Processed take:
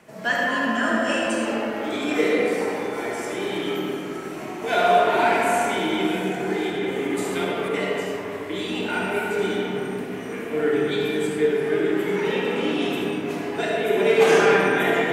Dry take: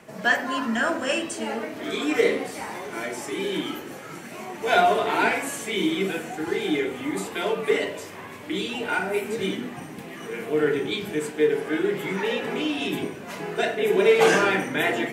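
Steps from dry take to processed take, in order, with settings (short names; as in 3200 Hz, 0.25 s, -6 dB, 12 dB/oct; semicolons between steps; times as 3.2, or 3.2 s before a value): 6.7–7.74 negative-ratio compressor -28 dBFS; reverb RT60 3.4 s, pre-delay 20 ms, DRR -3.5 dB; gain -3 dB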